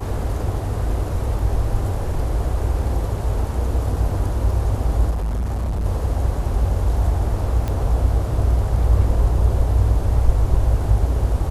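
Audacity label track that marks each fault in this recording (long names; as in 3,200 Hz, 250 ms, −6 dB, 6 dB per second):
5.100000	5.860000	clipping −19.5 dBFS
7.680000	7.680000	click −13 dBFS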